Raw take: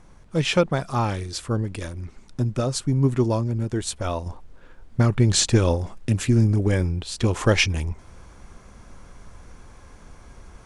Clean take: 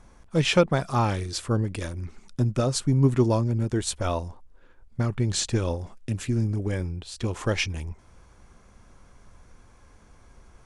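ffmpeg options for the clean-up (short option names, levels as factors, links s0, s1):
-af "agate=range=0.0891:threshold=0.0112,asetnsamples=n=441:p=0,asendcmd='4.26 volume volume -7dB',volume=1"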